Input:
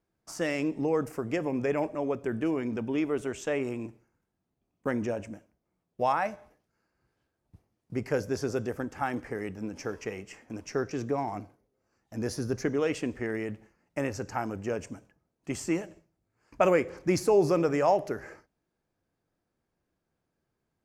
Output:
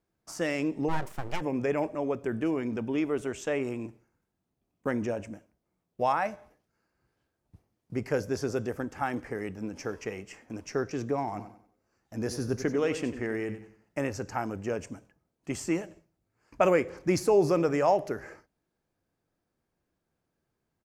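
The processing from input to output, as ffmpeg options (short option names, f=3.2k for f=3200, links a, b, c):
-filter_complex "[0:a]asplit=3[a][b][c];[a]afade=t=out:st=0.88:d=0.02[d];[b]aeval=exprs='abs(val(0))':c=same,afade=t=in:st=0.88:d=0.02,afade=t=out:st=1.4:d=0.02[e];[c]afade=t=in:st=1.4:d=0.02[f];[d][e][f]amix=inputs=3:normalize=0,asplit=3[g][h][i];[g]afade=t=out:st=11.37:d=0.02[j];[h]aecho=1:1:93|186|279|372:0.266|0.0905|0.0308|0.0105,afade=t=in:st=11.37:d=0.02,afade=t=out:st=14.04:d=0.02[k];[i]afade=t=in:st=14.04:d=0.02[l];[j][k][l]amix=inputs=3:normalize=0"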